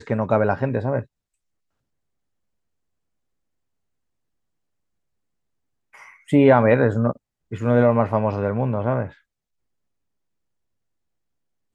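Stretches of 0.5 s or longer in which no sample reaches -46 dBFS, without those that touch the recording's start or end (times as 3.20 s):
1.05–5.94 s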